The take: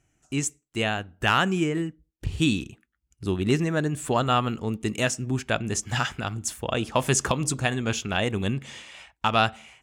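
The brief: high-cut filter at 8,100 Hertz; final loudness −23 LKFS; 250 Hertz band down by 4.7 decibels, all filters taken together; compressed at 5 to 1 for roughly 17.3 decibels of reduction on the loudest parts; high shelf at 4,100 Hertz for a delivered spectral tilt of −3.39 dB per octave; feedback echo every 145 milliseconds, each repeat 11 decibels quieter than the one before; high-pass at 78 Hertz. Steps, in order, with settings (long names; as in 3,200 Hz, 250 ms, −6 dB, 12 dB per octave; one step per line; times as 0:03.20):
high-pass filter 78 Hz
low-pass filter 8,100 Hz
parametric band 250 Hz −6.5 dB
high-shelf EQ 4,100 Hz +7.5 dB
downward compressor 5 to 1, threshold −36 dBFS
repeating echo 145 ms, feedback 28%, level −11 dB
level +15.5 dB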